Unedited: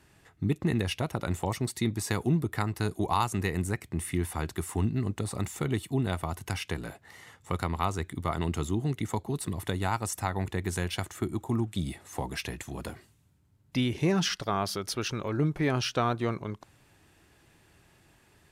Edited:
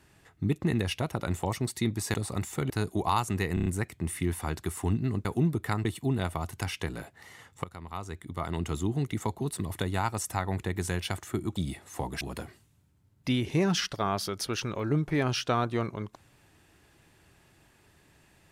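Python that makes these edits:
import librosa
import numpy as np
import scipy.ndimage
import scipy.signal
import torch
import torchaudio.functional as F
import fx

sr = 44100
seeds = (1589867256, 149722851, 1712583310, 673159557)

y = fx.edit(x, sr, fx.swap(start_s=2.14, length_s=0.6, other_s=5.17, other_length_s=0.56),
    fx.stutter(start_s=3.58, slice_s=0.03, count=5),
    fx.fade_in_from(start_s=7.52, length_s=1.23, floor_db=-18.0),
    fx.cut(start_s=11.44, length_s=0.31),
    fx.cut(start_s=12.4, length_s=0.29), tone=tone)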